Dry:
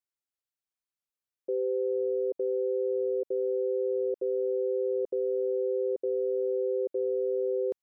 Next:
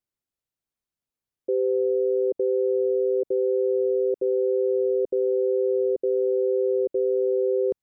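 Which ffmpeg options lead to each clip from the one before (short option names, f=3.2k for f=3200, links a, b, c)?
-af "lowshelf=f=450:g=12"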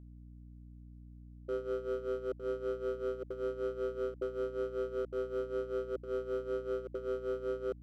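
-af "asoftclip=type=hard:threshold=-21.5dB,tremolo=f=5.2:d=0.78,aeval=exprs='val(0)+0.00794*(sin(2*PI*60*n/s)+sin(2*PI*2*60*n/s)/2+sin(2*PI*3*60*n/s)/3+sin(2*PI*4*60*n/s)/4+sin(2*PI*5*60*n/s)/5)':c=same,volume=-8.5dB"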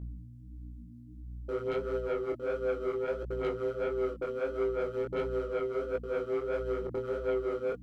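-af "aphaser=in_gain=1:out_gain=1:delay=4.5:decay=0.44:speed=0.58:type=triangular,aeval=exprs='0.0668*(cos(1*acos(clip(val(0)/0.0668,-1,1)))-cos(1*PI/2))+0.0168*(cos(5*acos(clip(val(0)/0.0668,-1,1)))-cos(5*PI/2))':c=same,flanger=delay=17.5:depth=7.8:speed=1.5,volume=2dB"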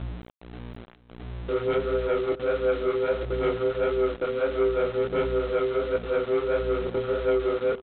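-af "aresample=8000,aeval=exprs='val(0)*gte(abs(val(0)),0.0075)':c=same,aresample=44100,aecho=1:1:422:0.119,volume=7.5dB"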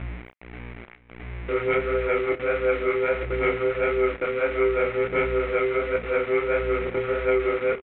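-filter_complex "[0:a]lowpass=f=2.2k:t=q:w=5,asplit=2[a][b];[b]adelay=31,volume=-12.5dB[c];[a][c]amix=inputs=2:normalize=0"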